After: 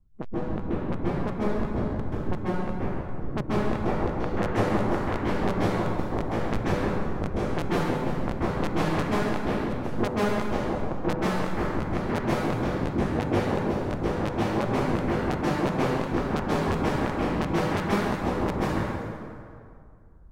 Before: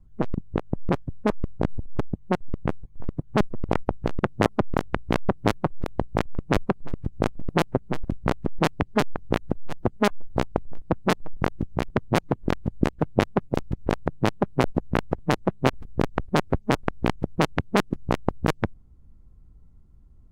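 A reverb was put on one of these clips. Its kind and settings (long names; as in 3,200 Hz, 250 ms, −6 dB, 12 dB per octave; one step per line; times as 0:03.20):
dense smooth reverb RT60 2.3 s, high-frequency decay 0.6×, pre-delay 120 ms, DRR −9 dB
level −10.5 dB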